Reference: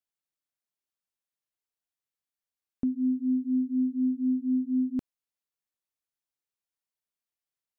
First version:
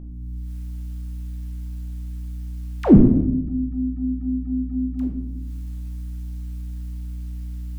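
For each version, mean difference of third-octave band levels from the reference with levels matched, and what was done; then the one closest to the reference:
7.0 dB: camcorder AGC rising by 58 dB per second
all-pass dispersion lows, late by 142 ms, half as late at 350 Hz
mains hum 60 Hz, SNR 11 dB
rectangular room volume 310 cubic metres, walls mixed, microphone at 0.92 metres
level +1.5 dB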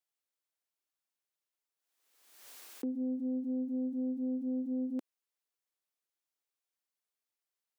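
3.0 dB: phase distortion by the signal itself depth 0.16 ms
high-pass filter 290 Hz 24 dB per octave
brickwall limiter −29 dBFS, peak gain reduction 4 dB
background raised ahead of every attack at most 54 dB per second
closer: second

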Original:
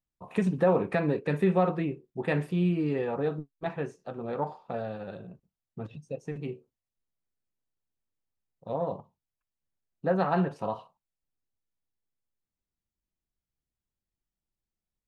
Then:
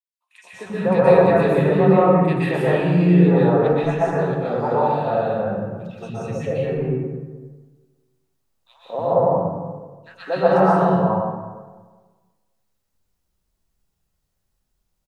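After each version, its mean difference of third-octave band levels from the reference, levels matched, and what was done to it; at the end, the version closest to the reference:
10.0 dB: automatic gain control gain up to 15.5 dB
three-band delay without the direct sound highs, mids, lows 230/320 ms, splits 310/1,900 Hz
dense smooth reverb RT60 1.4 s, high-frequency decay 0.55×, pre-delay 110 ms, DRR −8.5 dB
level −8 dB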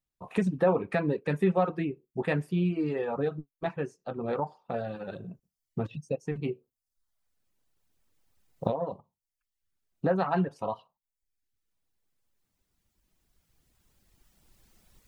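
3.0 dB: camcorder AGC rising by 7.3 dB per second
reverb reduction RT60 0.77 s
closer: second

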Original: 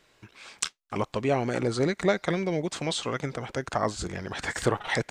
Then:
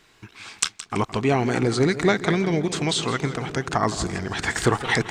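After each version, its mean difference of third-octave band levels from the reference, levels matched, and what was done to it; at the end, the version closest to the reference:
3.0 dB: parametric band 560 Hz −12.5 dB 0.28 octaves
on a send: bucket-brigade delay 231 ms, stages 1,024, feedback 85%, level −18 dB
on the sum: feedback echo with a swinging delay time 165 ms, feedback 39%, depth 134 cents, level −14 dB
level +6.5 dB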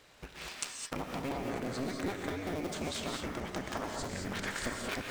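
10.0 dB: sub-harmonics by changed cycles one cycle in 2, inverted
downward compressor 6 to 1, threshold −38 dBFS, peak gain reduction 18.5 dB
reverb whose tail is shaped and stops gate 240 ms rising, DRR 1.5 dB
level +2 dB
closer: first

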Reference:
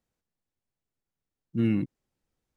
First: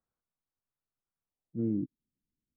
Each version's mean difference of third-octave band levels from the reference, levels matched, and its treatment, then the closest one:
6.0 dB: low-pass filter sweep 1,300 Hz → 250 Hz, 0:01.21–0:01.93
level −9 dB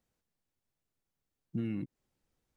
1.5 dB: downward compressor 8 to 1, threshold −33 dBFS, peak gain reduction 13 dB
level +1 dB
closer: second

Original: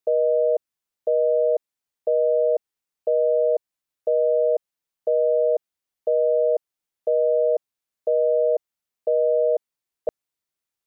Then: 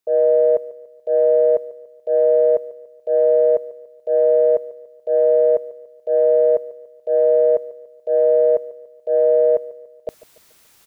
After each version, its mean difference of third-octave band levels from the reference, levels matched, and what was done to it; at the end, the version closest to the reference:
3.5 dB: reversed playback
upward compression, threshold −36 dBFS
reversed playback
transient designer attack −8 dB, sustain 0 dB
repeating echo 144 ms, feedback 45%, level −19 dB
level +5.5 dB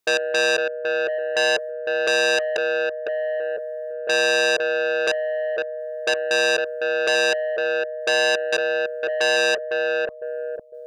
15.0 dB: gate pattern "x.xx....xx.xx" 88 BPM −12 dB
bucket-brigade delay 505 ms, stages 2,048, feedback 36%, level −5 dB
saturating transformer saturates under 2,800 Hz
level +7.5 dB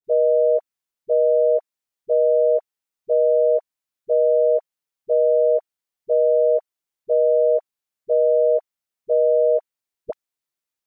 1.0 dB: low-shelf EQ 230 Hz −3 dB
in parallel at +1 dB: output level in coarse steps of 20 dB
on the sum: all-pass dispersion highs, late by 44 ms, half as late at 550 Hz
level −3 dB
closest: third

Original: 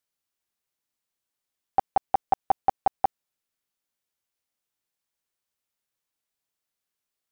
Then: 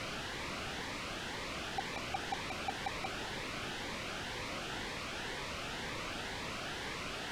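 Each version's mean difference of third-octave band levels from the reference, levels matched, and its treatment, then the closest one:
17.0 dB: sign of each sample alone
low-pass filter 2,500 Hz 12 dB per octave
phaser whose notches keep moving one way rising 2 Hz
level +4.5 dB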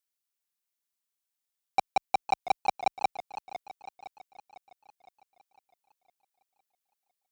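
6.5 dB: leveller curve on the samples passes 2
spectral tilt +2 dB per octave
feedback echo with a swinging delay time 507 ms, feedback 50%, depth 142 cents, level −13.5 dB
level −4 dB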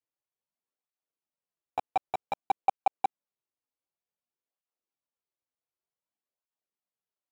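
4.5 dB: running median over 25 samples
low-shelf EQ 240 Hz −9.5 dB
through-zero flanger with one copy inverted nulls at 0.54 Hz, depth 5.5 ms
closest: third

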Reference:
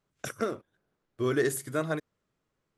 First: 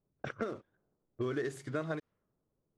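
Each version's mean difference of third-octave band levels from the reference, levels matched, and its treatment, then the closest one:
4.0 dB: one scale factor per block 5 bits
low-pass that shuts in the quiet parts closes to 590 Hz, open at −28.5 dBFS
downward compressor 5 to 1, threshold −32 dBFS, peak gain reduction 10 dB
high-frequency loss of the air 100 metres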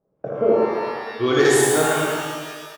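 10.0 dB: low-shelf EQ 79 Hz −9.5 dB
low-pass filter sweep 570 Hz → 10,000 Hz, 0:00.79–0:01.62
loudspeakers that aren't time-aligned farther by 27 metres −3 dB, 39 metres −11 dB
reverb with rising layers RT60 1.7 s, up +12 semitones, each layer −8 dB, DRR −3 dB
level +5 dB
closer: first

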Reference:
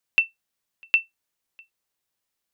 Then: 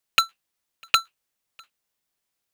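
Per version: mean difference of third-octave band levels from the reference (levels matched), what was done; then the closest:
7.0 dB: sub-harmonics by changed cycles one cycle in 2, inverted
level +1 dB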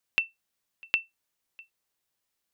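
2.5 dB: downward compressor, threshold −23 dBFS, peak gain reduction 8 dB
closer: second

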